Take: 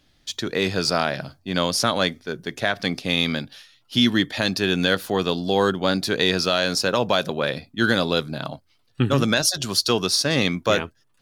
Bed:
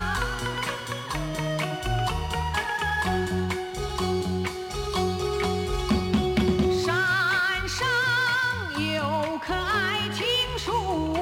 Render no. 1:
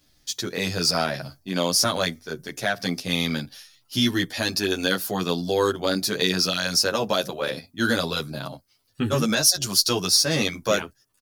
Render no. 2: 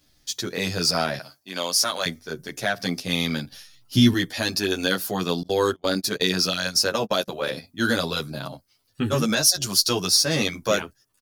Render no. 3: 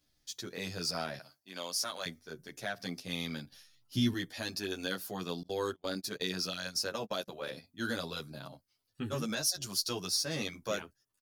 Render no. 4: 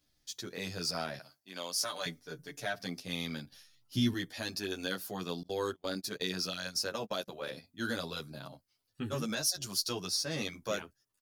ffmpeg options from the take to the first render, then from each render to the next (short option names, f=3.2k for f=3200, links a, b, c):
-filter_complex "[0:a]aexciter=amount=1.9:drive=8.1:freq=4.8k,asplit=2[a][b];[b]adelay=10.5,afreqshift=-0.86[c];[a][c]amix=inputs=2:normalize=1"
-filter_complex "[0:a]asettb=1/sr,asplit=3[a][b][c];[a]atrim=end=1.194[d];[b]atrim=start=1.19:end=2.06,asetpts=PTS-STARTPTS,afade=t=in:d=0.004:c=qsin,afade=t=out:st=0.866:d=0.004:c=qsin,highpass=f=810:p=1[e];[c]atrim=start=2.056[f];[d][e]acrossfade=d=0.004:c1=hsin:c2=qsin[g];[g][f]acrossfade=d=0.004:c1=qsin:c2=hsin,asettb=1/sr,asplit=3[h][i][j];[h]atrim=end=3.524[k];[i]atrim=start=3.52:end=4.14,asetpts=PTS-STARTPTS,afade=t=in:d=0.004:c=qsin,afade=t=out:st=0.616:d=0.004:c=qsin,lowshelf=f=290:g=11[l];[j]atrim=start=4.136[m];[k][l]acrossfade=d=0.004:c1=hsin:c2=qsin[n];[n][m]acrossfade=d=0.004:c1=qsin:c2=hsin,asettb=1/sr,asplit=3[o][p][q];[o]atrim=end=5.434[r];[p]atrim=start=5.43:end=7.28,asetpts=PTS-STARTPTS,afade=t=in:d=0.004:c=qsin,afade=t=out:st=1.846:d=0.004:c=qsin,agate=range=-30dB:threshold=-28dB:ratio=16:release=100:detection=peak[s];[q]atrim=start=7.276[t];[r][s]acrossfade=d=0.004:c1=hsin:c2=qsin[u];[u][t]acrossfade=d=0.004:c1=qsin:c2=hsin"
-af "volume=-13dB"
-filter_complex "[0:a]asettb=1/sr,asplit=3[a][b][c];[a]atrim=end=1.774[d];[b]atrim=start=1.77:end=2.79,asetpts=PTS-STARTPTS,afade=t=in:d=0.004:c=qsin,afade=t=out:st=1.016:d=0.004:c=qsin,aecho=1:1:6.8:0.65,atrim=end_sample=44982[e];[c]atrim=start=2.786[f];[d][e]acrossfade=d=0.004:c1=hsin:c2=qsin[g];[g][f]acrossfade=d=0.004:c1=qsin:c2=hsin,asettb=1/sr,asplit=3[h][i][j];[h]atrim=end=9.924[k];[i]atrim=start=9.92:end=10.38,asetpts=PTS-STARTPTS,afade=t=in:d=0.004:c=qsin,afade=t=out:st=0.456:d=0.004:c=qsin,highshelf=f=8.5k:g=-5[l];[j]atrim=start=10.376[m];[k][l]acrossfade=d=0.004:c1=hsin:c2=qsin[n];[n][m]acrossfade=d=0.004:c1=qsin:c2=hsin"